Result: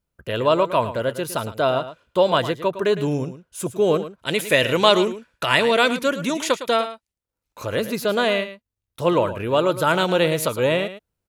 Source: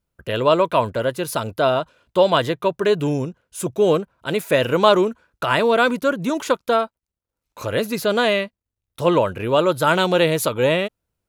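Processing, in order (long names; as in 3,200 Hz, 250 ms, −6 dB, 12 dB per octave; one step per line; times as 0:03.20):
gain on a spectral selection 0:04.19–0:07.13, 1,700–12,000 Hz +7 dB
on a send: single-tap delay 109 ms −12.5 dB
on the sum: level −2 dB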